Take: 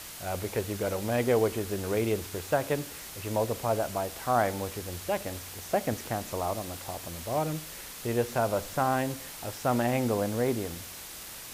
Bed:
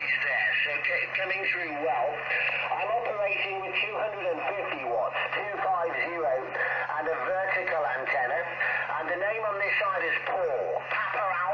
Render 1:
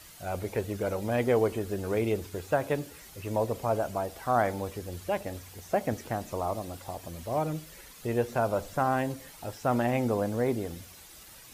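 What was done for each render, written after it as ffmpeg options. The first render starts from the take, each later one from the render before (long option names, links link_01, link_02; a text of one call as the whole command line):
ffmpeg -i in.wav -af "afftdn=noise_reduction=10:noise_floor=-43" out.wav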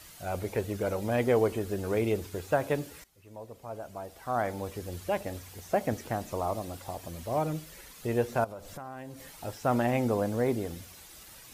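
ffmpeg -i in.wav -filter_complex "[0:a]asettb=1/sr,asplit=3[link_01][link_02][link_03];[link_01]atrim=end=8.444[link_04];[link_02]atrim=start=8.44:end=9.25,asetpts=PTS-STARTPTS,afade=type=in:duration=0.004:curve=qsin,afade=type=out:start_time=0.806:duration=0.004:curve=qsin,acompressor=threshold=-41dB:ratio=4:attack=3.2:release=140:knee=1:detection=peak[link_05];[link_03]atrim=start=9.246[link_06];[link_04][link_05]acrossfade=duration=0.004:curve1=hsin:curve2=qsin[link_07];[link_07][link_06]acrossfade=duration=0.004:curve1=qsin:curve2=hsin,asplit=2[link_08][link_09];[link_08]atrim=end=3.04,asetpts=PTS-STARTPTS,afade=type=out:start_time=3.036:duration=0.004:curve=hsin:silence=0.11885[link_10];[link_09]atrim=start=3.04,asetpts=PTS-STARTPTS,afade=type=in:duration=1.81:curve=qua:silence=0.11885[link_11];[link_10][link_11]concat=n=2:v=0:a=1" out.wav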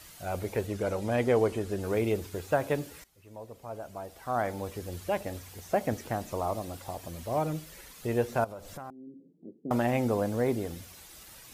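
ffmpeg -i in.wav -filter_complex "[0:a]asettb=1/sr,asplit=3[link_01][link_02][link_03];[link_01]atrim=end=0.674[link_04];[link_02]atrim=start=0.67:end=1.81,asetpts=PTS-STARTPTS,afade=type=in:duration=0.004:curve=qsin,afade=type=out:start_time=1.136:duration=0.004:curve=qsin,lowpass=11000[link_05];[link_03]atrim=start=1.806[link_06];[link_04][link_05]acrossfade=duration=0.004:curve1=hsin:curve2=qsin[link_07];[link_07][link_06]acrossfade=duration=0.004:curve1=qsin:curve2=hsin,asettb=1/sr,asplit=3[link_08][link_09][link_10];[link_08]atrim=end=8.904[link_11];[link_09]atrim=start=8.9:end=9.71,asetpts=PTS-STARTPTS,afade=type=in:duration=0.004:curve=qsin,afade=type=out:start_time=0.806:duration=0.004:curve=qsin,asuperpass=centerf=260:order=8:qfactor=1.1[link_12];[link_10]atrim=start=9.706[link_13];[link_11][link_12]acrossfade=duration=0.004:curve1=hsin:curve2=qsin[link_14];[link_14][link_13]acrossfade=duration=0.004:curve1=qsin:curve2=hsin" out.wav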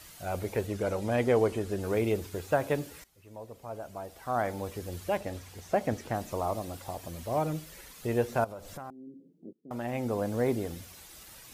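ffmpeg -i in.wav -filter_complex "[0:a]asettb=1/sr,asplit=3[link_01][link_02][link_03];[link_01]atrim=end=5.174[link_04];[link_02]atrim=start=5.17:end=6.15,asetpts=PTS-STARTPTS,afade=type=in:duration=0.004:curve=qsin,afade=type=out:start_time=0.976:duration=0.004:curve=qsin,highshelf=frequency=11000:gain=-9.5[link_05];[link_03]atrim=start=6.146[link_06];[link_04][link_05]acrossfade=duration=0.004:curve1=hsin:curve2=qsin[link_07];[link_07][link_06]acrossfade=duration=0.004:curve1=qsin:curve2=hsin,asplit=2[link_08][link_09];[link_08]atrim=end=9.53,asetpts=PTS-STARTPTS,afade=type=out:start_time=9.526:duration=0.004:curve=hsin:silence=0.105925[link_10];[link_09]atrim=start=9.53,asetpts=PTS-STARTPTS,afade=type=in:duration=0.91:silence=0.105925[link_11];[link_10][link_11]concat=n=2:v=0:a=1" out.wav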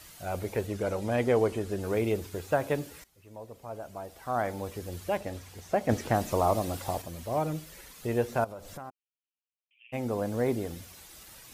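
ffmpeg -i in.wav -filter_complex "[0:a]asettb=1/sr,asplit=3[link_01][link_02][link_03];[link_01]atrim=end=5.894[link_04];[link_02]atrim=start=5.89:end=7.02,asetpts=PTS-STARTPTS,afade=type=in:duration=0.004:curve=qsin,afade=type=out:start_time=1.126:duration=0.004:curve=qsin,acontrast=57[link_05];[link_03]atrim=start=7.016[link_06];[link_04][link_05]acrossfade=duration=0.004:curve1=hsin:curve2=qsin[link_07];[link_07][link_06]acrossfade=duration=0.004:curve1=qsin:curve2=hsin,asplit=3[link_08][link_09][link_10];[link_08]afade=type=out:start_time=8.89:duration=0.02[link_11];[link_09]asuperpass=centerf=2700:order=8:qfactor=3.3,afade=type=in:start_time=8.89:duration=0.02,afade=type=out:start_time=9.92:duration=0.02[link_12];[link_10]afade=type=in:start_time=9.92:duration=0.02[link_13];[link_11][link_12][link_13]amix=inputs=3:normalize=0" out.wav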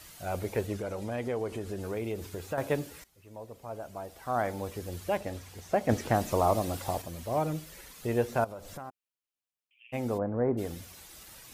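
ffmpeg -i in.wav -filter_complex "[0:a]asettb=1/sr,asplit=3[link_01][link_02][link_03];[link_01]atrim=end=0.784[link_04];[link_02]atrim=start=0.78:end=2.58,asetpts=PTS-STARTPTS,afade=type=in:duration=0.004:curve=qsin,afade=type=out:start_time=1.796:duration=0.004:curve=qsin,acompressor=threshold=-35dB:ratio=2:attack=3.2:release=140:knee=1:detection=peak[link_05];[link_03]atrim=start=2.576[link_06];[link_04][link_05]acrossfade=duration=0.004:curve1=hsin:curve2=qsin[link_07];[link_07][link_06]acrossfade=duration=0.004:curve1=qsin:curve2=hsin,asplit=3[link_08][link_09][link_10];[link_08]afade=type=out:start_time=10.17:duration=0.02[link_11];[link_09]lowpass=frequency=1500:width=0.5412,lowpass=frequency=1500:width=1.3066,afade=type=in:start_time=10.17:duration=0.02,afade=type=out:start_time=10.57:duration=0.02[link_12];[link_10]afade=type=in:start_time=10.57:duration=0.02[link_13];[link_11][link_12][link_13]amix=inputs=3:normalize=0" out.wav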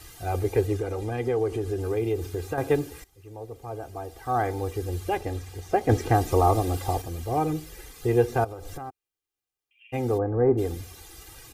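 ffmpeg -i in.wav -af "lowshelf=frequency=470:gain=7.5,aecho=1:1:2.5:0.81" out.wav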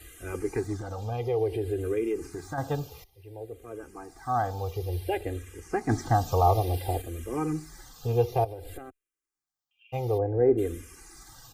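ffmpeg -i in.wav -filter_complex "[0:a]asplit=2[link_01][link_02];[link_02]afreqshift=-0.57[link_03];[link_01][link_03]amix=inputs=2:normalize=1" out.wav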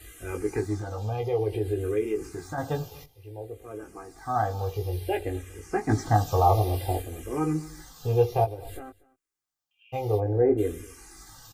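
ffmpeg -i in.wav -filter_complex "[0:a]asplit=2[link_01][link_02];[link_02]adelay=19,volume=-4.5dB[link_03];[link_01][link_03]amix=inputs=2:normalize=0,aecho=1:1:238:0.0708" out.wav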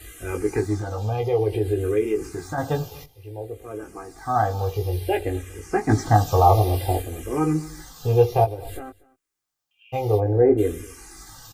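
ffmpeg -i in.wav -af "volume=5dB" out.wav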